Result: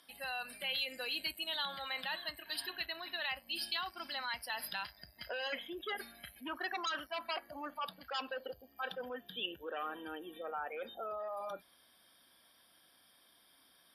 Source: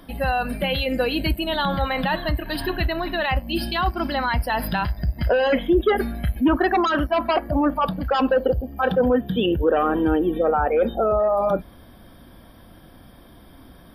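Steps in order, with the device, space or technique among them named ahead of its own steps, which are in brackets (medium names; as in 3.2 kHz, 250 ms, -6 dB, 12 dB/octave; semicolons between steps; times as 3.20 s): piezo pickup straight into a mixer (low-pass 7.9 kHz 12 dB/octave; differentiator); trim -1.5 dB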